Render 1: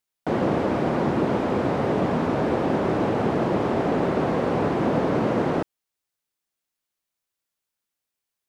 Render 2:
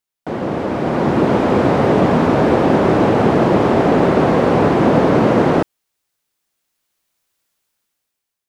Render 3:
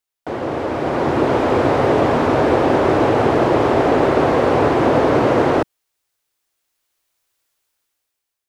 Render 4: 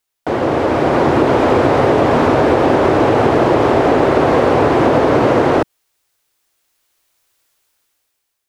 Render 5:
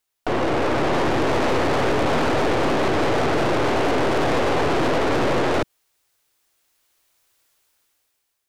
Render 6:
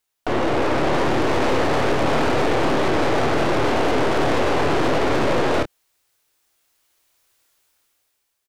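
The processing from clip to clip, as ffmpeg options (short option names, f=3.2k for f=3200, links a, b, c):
-af "dynaudnorm=f=390:g=5:m=13.5dB"
-af "equalizer=f=190:w=2.7:g=-14"
-af "acompressor=threshold=-16dB:ratio=6,volume=7.5dB"
-af "aeval=exprs='(tanh(12.6*val(0)+0.75)-tanh(0.75))/12.6':c=same,volume=3dB"
-filter_complex "[0:a]asplit=2[a][b];[b]adelay=27,volume=-8dB[c];[a][c]amix=inputs=2:normalize=0"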